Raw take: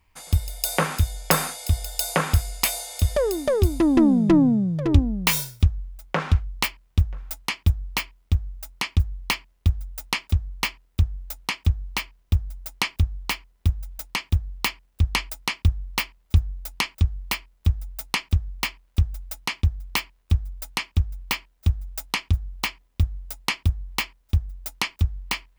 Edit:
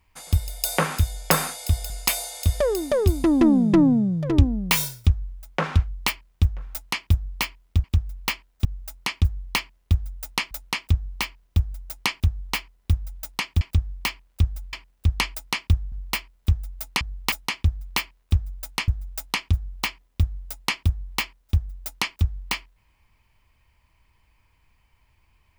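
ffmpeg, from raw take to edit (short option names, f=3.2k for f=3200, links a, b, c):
-filter_complex "[0:a]asplit=11[a][b][c][d][e][f][g][h][i][j][k];[a]atrim=end=1.902[l];[b]atrim=start=2.458:end=8.402[m];[c]atrim=start=20.868:end=21.682[n];[d]atrim=start=8.398:end=10.262[o];[e]atrim=start=11.268:end=14.372[p];[f]atrim=start=18.188:end=19.312[q];[g]atrim=start=14.678:end=15.872[r];[h]atrim=start=17.098:end=18.192[s];[i]atrim=start=14.368:end=14.682[t];[j]atrim=start=19.308:end=20.872[u];[k]atrim=start=21.678[v];[l][m]acrossfade=d=0.004:c1=hsin:c2=hsin[w];[w][n]acrossfade=d=0.004:c1=hsin:c2=hsin[x];[x][o]acrossfade=d=0.004:c1=hsin:c2=hsin[y];[y][p]acrossfade=d=0.004:c1=hsin:c2=hsin[z];[z][q]acrossfade=d=0.004:c1=hsin:c2=hsin[aa];[aa][r]acrossfade=d=0.004:c1=hsin:c2=hsin[ab];[ab][s]acrossfade=d=0.004:c1=hsin:c2=hsin[ac];[ac][t]acrossfade=d=0.004:c1=hsin:c2=hsin[ad];[ad][u]acrossfade=d=0.004:c1=hsin:c2=hsin[ae];[ae][v]acrossfade=d=0.004:c1=hsin:c2=hsin"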